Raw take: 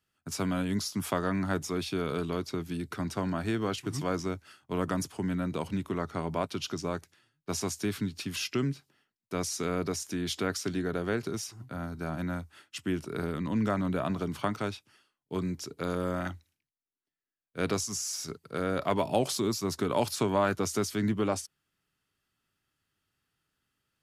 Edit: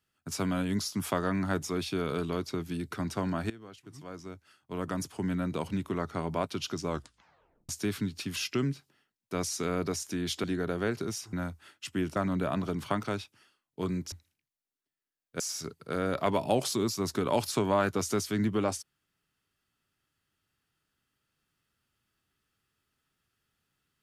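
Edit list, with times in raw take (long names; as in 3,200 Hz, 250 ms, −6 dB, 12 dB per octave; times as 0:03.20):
0:03.50–0:05.25: fade in quadratic, from −18 dB
0:06.87: tape stop 0.82 s
0:10.44–0:10.70: remove
0:11.59–0:12.24: remove
0:13.07–0:13.69: remove
0:15.65–0:16.33: remove
0:17.61–0:18.04: remove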